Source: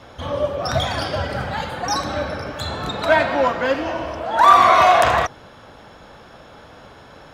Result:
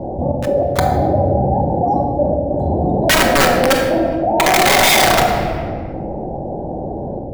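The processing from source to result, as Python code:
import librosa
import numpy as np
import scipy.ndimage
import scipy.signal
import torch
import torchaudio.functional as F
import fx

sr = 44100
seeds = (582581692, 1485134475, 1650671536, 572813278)

y = scipy.signal.sosfilt(scipy.signal.ellip(4, 1.0, 40, 790.0, 'lowpass', fs=sr, output='sos'), x)
y = fx.peak_eq(y, sr, hz=320.0, db=7.5, octaves=0.2)
y = (np.mod(10.0 ** (14.0 / 20.0) * y + 1.0, 2.0) - 1.0) / 10.0 ** (14.0 / 20.0)
y = fx.step_gate(y, sr, bpm=96, pattern='xx.x.xxxxxx', floor_db=-24.0, edge_ms=4.5)
y = fx.room_shoebox(y, sr, seeds[0], volume_m3=900.0, walls='mixed', distance_m=1.1)
y = fx.env_flatten(y, sr, amount_pct=50)
y = F.gain(torch.from_numpy(y), 5.0).numpy()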